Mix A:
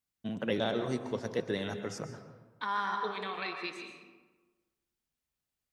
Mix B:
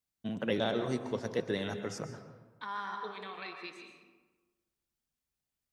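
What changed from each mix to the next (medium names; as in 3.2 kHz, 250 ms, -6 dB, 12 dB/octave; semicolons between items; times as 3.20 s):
second voice -6.0 dB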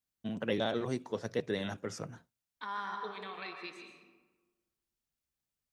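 first voice: send off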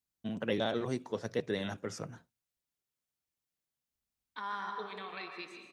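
second voice: entry +1.75 s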